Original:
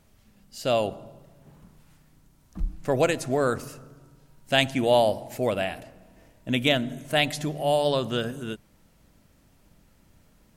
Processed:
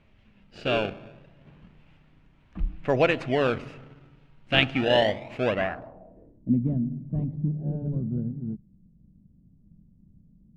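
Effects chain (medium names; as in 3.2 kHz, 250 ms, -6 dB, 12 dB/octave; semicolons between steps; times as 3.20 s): in parallel at -3.5 dB: decimation with a swept rate 25×, swing 160% 0.28 Hz; on the sum: low-pass sweep 2.7 kHz -> 190 Hz, 5.47–6.59 s; trim -4 dB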